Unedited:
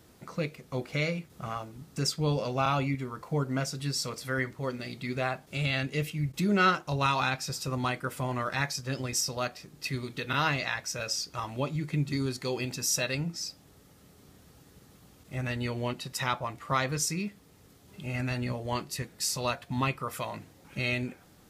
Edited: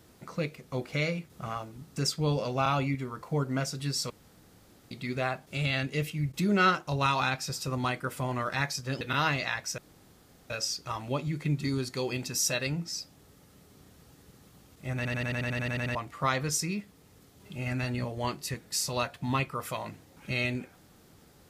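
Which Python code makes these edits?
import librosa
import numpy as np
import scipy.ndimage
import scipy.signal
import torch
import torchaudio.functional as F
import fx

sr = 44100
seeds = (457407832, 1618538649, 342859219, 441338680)

y = fx.edit(x, sr, fx.room_tone_fill(start_s=4.1, length_s=0.81),
    fx.cut(start_s=9.01, length_s=1.2),
    fx.insert_room_tone(at_s=10.98, length_s=0.72),
    fx.stutter_over(start_s=15.44, slice_s=0.09, count=11), tone=tone)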